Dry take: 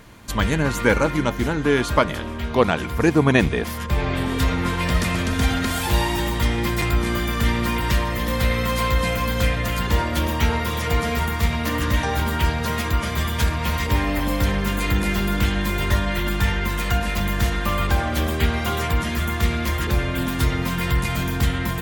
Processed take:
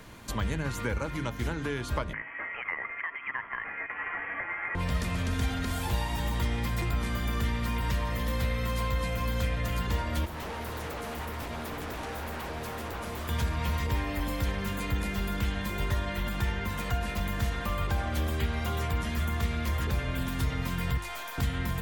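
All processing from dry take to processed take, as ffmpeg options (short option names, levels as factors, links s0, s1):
-filter_complex "[0:a]asettb=1/sr,asplit=3[s0][s1][s2];[s0]atrim=end=2.134[s3];[s1]atrim=start=2.13:end=4.75,asetpts=PTS-STARTPTS,afade=t=in:d=0.004:c=qsin,afade=t=out:st=2.616:d=0.004:c=qsin,acompressor=threshold=0.112:ratio=4:attack=3.2:release=140:knee=1:detection=peak,highpass=f=1500:t=q:w=7.2,lowpass=f=3000:t=q:w=0.5098,lowpass=f=3000:t=q:w=0.6013,lowpass=f=3000:t=q:w=0.9,lowpass=f=3000:t=q:w=2.563,afreqshift=-3500[s4];[s2]atrim=start=4.746[s5];[s3][s4]acrossfade=d=0.004:c1=hsin:c2=qsin[s6];[s6][s5]acrossfade=d=0.004:c1=qsin:c2=hsin,asettb=1/sr,asplit=3[s7][s8][s9];[s7]atrim=end=10.254[s10];[s8]atrim=start=10.25:end=13.29,asetpts=PTS-STARTPTS,afade=t=in:d=0.004:c=qsin,afade=t=out:st=3.036:d=0.004:c=qsin,acrossover=split=290|990|7700[s11][s12][s13][s14];[s11]acompressor=threshold=0.0251:ratio=3[s15];[s12]acompressor=threshold=0.0316:ratio=3[s16];[s13]acompressor=threshold=0.00562:ratio=3[s17];[s14]acompressor=threshold=0.00562:ratio=3[s18];[s15][s16][s17][s18]amix=inputs=4:normalize=0,aeval=exprs='0.0376*(abs(mod(val(0)/0.0376+3,4)-2)-1)':c=same[s19];[s9]atrim=start=13.286[s20];[s10][s19]acrossfade=d=0.004:c1=hsin:c2=qsin[s21];[s21][s20]acrossfade=d=0.004:c1=qsin:c2=hsin,asettb=1/sr,asplit=3[s22][s23][s24];[s22]atrim=end=20.974[s25];[s23]atrim=start=20.97:end=21.38,asetpts=PTS-STARTPTS,afade=t=in:d=0.004:c=qsin,afade=t=out:st=0.406:d=0.004:c=qsin,highpass=f=640:w=0.5412,highpass=f=640:w=1.3066,aeval=exprs='(tanh(22.4*val(0)+0.55)-tanh(0.55))/22.4':c=same[s26];[s24]atrim=start=21.376[s27];[s25][s26]acrossfade=d=0.004:c1=hsin:c2=qsin[s28];[s28][s27]acrossfade=d=0.004:c1=qsin:c2=hsin,bandreject=f=50:t=h:w=6,bandreject=f=100:t=h:w=6,bandreject=f=150:t=h:w=6,bandreject=f=200:t=h:w=6,bandreject=f=250:t=h:w=6,bandreject=f=300:t=h:w=6,bandreject=f=350:t=h:w=6,acrossover=split=110|1100[s29][s30][s31];[s29]acompressor=threshold=0.0501:ratio=4[s32];[s30]acompressor=threshold=0.0224:ratio=4[s33];[s31]acompressor=threshold=0.0141:ratio=4[s34];[s32][s33][s34]amix=inputs=3:normalize=0,volume=0.794"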